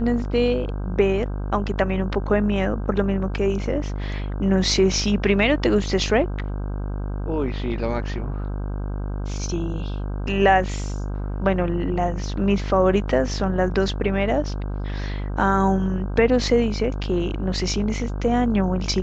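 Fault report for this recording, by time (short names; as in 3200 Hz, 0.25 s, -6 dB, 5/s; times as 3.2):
buzz 50 Hz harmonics 32 -27 dBFS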